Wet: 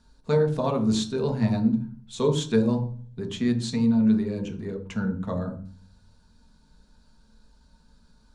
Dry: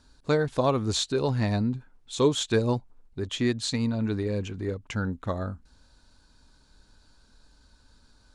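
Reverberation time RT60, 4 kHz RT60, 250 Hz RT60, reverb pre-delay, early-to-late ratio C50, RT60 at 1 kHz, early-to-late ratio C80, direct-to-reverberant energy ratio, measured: 0.40 s, 0.40 s, 0.70 s, 4 ms, 11.0 dB, 0.45 s, 15.0 dB, 2.5 dB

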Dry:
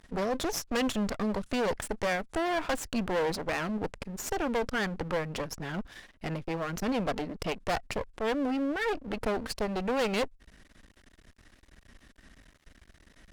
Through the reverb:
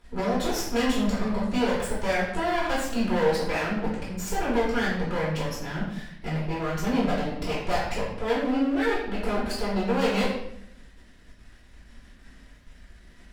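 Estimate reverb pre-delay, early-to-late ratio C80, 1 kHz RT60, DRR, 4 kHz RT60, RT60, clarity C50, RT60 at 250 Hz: 3 ms, 5.0 dB, 0.70 s, -10.0 dB, 0.65 s, 0.75 s, 2.0 dB, 1.0 s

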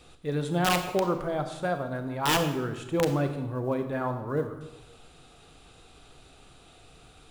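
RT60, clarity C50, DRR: 1.0 s, 9.0 dB, 7.0 dB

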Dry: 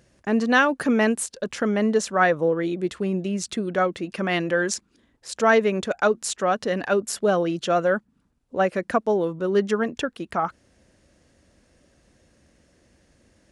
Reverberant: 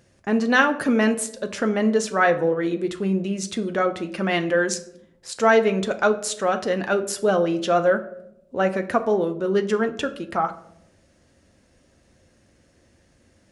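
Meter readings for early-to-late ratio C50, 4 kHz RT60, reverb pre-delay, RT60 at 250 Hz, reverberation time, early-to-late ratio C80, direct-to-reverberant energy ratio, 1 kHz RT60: 14.0 dB, 0.40 s, 6 ms, 0.95 s, 0.80 s, 17.5 dB, 6.5 dB, 0.60 s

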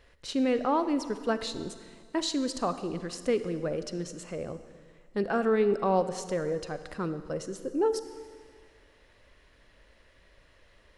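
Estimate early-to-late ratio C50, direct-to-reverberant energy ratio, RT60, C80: 11.5 dB, 11.0 dB, 1.9 s, 12.5 dB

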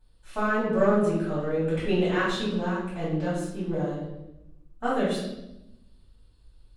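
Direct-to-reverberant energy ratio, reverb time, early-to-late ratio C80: -10.0 dB, 0.90 s, 4.5 dB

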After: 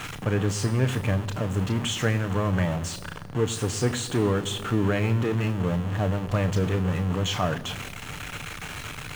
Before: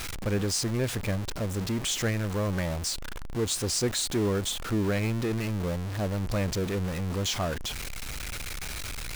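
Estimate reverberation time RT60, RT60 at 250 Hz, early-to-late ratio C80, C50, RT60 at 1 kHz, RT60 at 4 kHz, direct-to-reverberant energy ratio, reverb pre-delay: 1.8 s, 2.3 s, 18.5 dB, 17.5 dB, 1.7 s, 1.2 s, 9.5 dB, 3 ms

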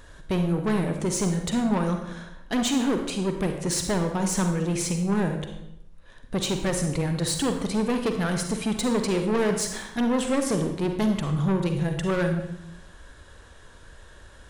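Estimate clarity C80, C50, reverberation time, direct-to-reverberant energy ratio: 8.5 dB, 6.0 dB, 0.80 s, 5.0 dB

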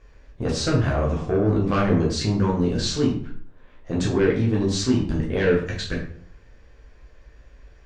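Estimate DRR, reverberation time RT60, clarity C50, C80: -4.0 dB, 0.55 s, 6.0 dB, 10.0 dB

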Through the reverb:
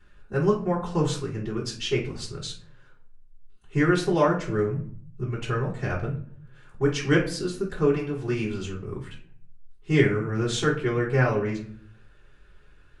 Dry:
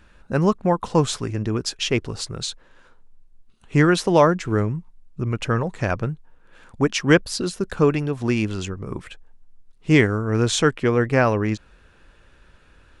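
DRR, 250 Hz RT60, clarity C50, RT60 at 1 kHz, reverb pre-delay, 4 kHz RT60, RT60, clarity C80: -10.5 dB, 0.75 s, 8.0 dB, 0.45 s, 3 ms, 0.35 s, 0.55 s, 13.0 dB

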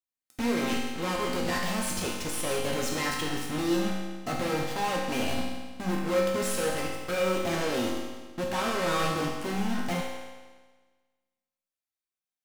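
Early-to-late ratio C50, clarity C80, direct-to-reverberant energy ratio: 1.0 dB, 3.0 dB, -3.5 dB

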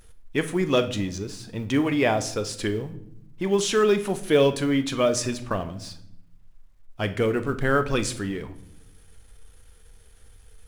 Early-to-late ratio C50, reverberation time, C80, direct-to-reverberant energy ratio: 13.5 dB, 0.75 s, 17.5 dB, 8.5 dB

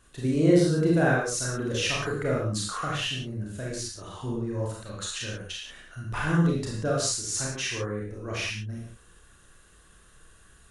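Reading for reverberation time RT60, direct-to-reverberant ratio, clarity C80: not exponential, -4.0 dB, 4.5 dB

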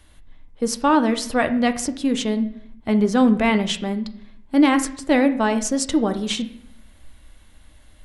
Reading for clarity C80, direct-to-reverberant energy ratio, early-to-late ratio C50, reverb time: 16.0 dB, 8.0 dB, 13.5 dB, 0.65 s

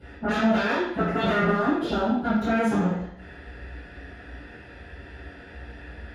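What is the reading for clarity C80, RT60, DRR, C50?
4.0 dB, 0.70 s, -18.0 dB, 0.5 dB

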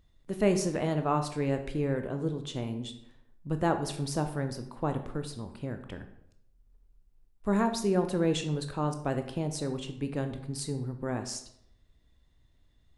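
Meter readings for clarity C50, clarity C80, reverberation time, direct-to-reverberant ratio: 10.0 dB, 13.0 dB, 0.75 s, 6.5 dB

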